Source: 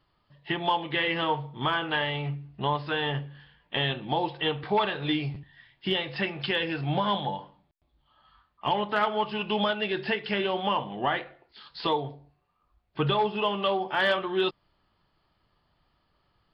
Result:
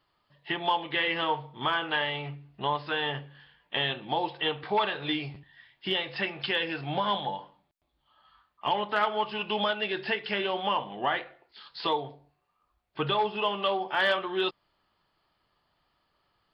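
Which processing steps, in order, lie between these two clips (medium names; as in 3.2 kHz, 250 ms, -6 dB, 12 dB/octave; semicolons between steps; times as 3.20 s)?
bass shelf 250 Hz -10 dB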